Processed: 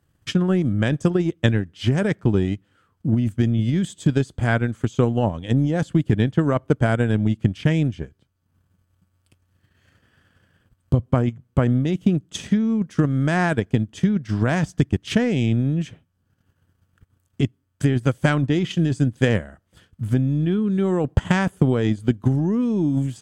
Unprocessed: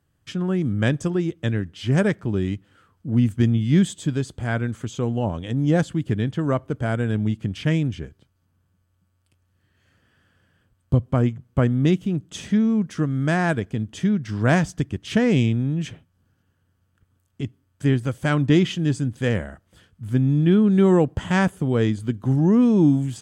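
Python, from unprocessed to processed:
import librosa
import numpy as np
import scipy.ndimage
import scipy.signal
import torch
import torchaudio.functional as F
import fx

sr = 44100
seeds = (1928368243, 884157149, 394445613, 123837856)

p1 = fx.over_compress(x, sr, threshold_db=-21.0, ratio=-0.5)
p2 = x + (p1 * librosa.db_to_amplitude(3.0))
p3 = fx.transient(p2, sr, attack_db=7, sustain_db=-7)
y = p3 * librosa.db_to_amplitude(-7.0)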